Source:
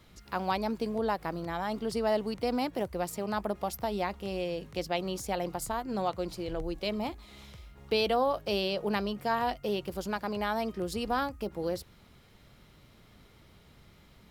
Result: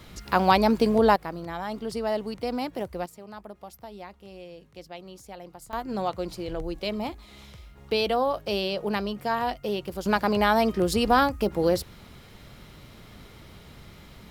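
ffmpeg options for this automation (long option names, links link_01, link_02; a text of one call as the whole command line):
ffmpeg -i in.wav -af "asetnsamples=nb_out_samples=441:pad=0,asendcmd='1.16 volume volume 0.5dB;3.06 volume volume -10dB;5.73 volume volume 2.5dB;10.06 volume volume 10dB',volume=11dB" out.wav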